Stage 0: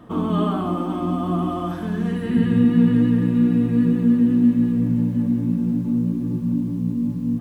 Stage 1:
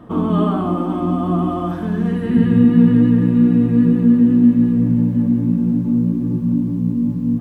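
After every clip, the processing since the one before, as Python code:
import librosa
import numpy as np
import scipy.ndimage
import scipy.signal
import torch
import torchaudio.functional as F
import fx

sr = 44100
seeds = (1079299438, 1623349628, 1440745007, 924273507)

y = fx.high_shelf(x, sr, hz=2100.0, db=-7.5)
y = y * 10.0 ** (4.5 / 20.0)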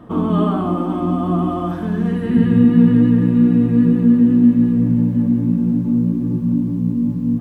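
y = x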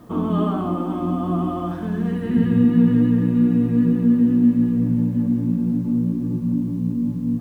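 y = fx.quant_dither(x, sr, seeds[0], bits=10, dither='triangular')
y = y * 10.0 ** (-4.0 / 20.0)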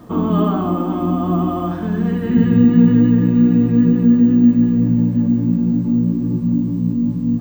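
y = np.repeat(scipy.signal.resample_poly(x, 1, 2), 2)[:len(x)]
y = y * 10.0 ** (4.5 / 20.0)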